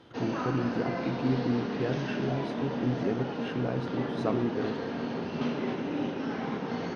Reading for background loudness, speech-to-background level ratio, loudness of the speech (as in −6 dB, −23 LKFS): −33.5 LKFS, 0.0 dB, −33.5 LKFS